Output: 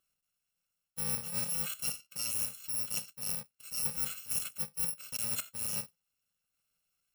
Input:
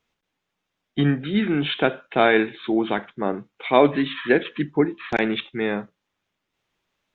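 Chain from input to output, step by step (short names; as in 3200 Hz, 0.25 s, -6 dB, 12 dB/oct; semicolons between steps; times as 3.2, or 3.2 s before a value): FFT order left unsorted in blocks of 128 samples; low shelf 140 Hz -8 dB; reverse; compressor 10:1, threshold -26 dBFS, peak gain reduction 17 dB; reverse; gain -5 dB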